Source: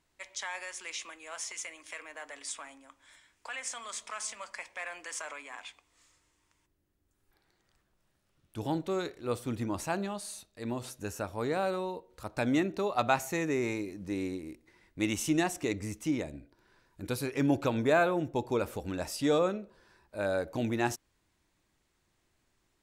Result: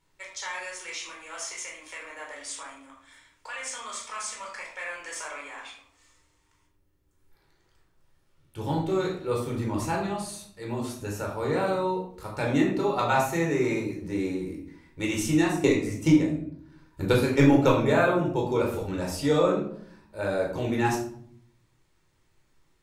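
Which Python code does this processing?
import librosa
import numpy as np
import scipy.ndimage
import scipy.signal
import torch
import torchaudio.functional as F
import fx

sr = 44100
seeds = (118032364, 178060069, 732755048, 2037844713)

y = fx.transient(x, sr, attack_db=11, sustain_db=-5, at=(15.46, 17.85), fade=0.02)
y = fx.room_shoebox(y, sr, seeds[0], volume_m3=900.0, walls='furnished', distance_m=4.4)
y = F.gain(torch.from_numpy(y), -1.5).numpy()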